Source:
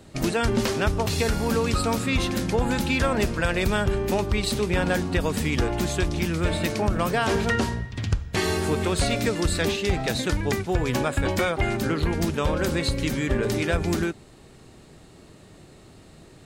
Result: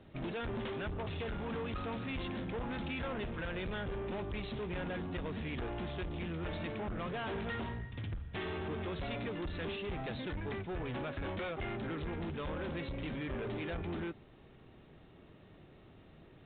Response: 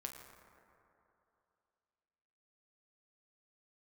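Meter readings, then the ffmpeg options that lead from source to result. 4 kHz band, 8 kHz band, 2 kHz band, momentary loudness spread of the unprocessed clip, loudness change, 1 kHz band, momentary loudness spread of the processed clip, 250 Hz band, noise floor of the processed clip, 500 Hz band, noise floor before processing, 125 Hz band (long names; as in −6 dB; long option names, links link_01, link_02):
−17.0 dB, below −40 dB, −15.0 dB, 2 LU, −15.0 dB, −14.5 dB, 20 LU, −14.5 dB, −58 dBFS, −14.5 dB, −50 dBFS, −15.0 dB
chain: -af "aresample=16000,asoftclip=type=tanh:threshold=-27dB,aresample=44100,aresample=8000,aresample=44100,volume=-8.5dB"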